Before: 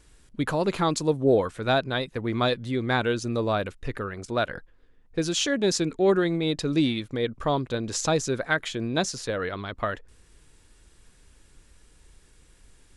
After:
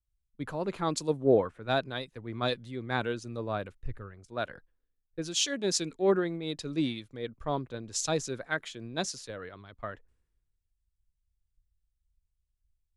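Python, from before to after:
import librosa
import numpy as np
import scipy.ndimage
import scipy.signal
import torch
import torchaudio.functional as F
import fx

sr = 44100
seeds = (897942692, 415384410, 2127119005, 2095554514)

y = fx.band_widen(x, sr, depth_pct=100)
y = y * 10.0 ** (-8.5 / 20.0)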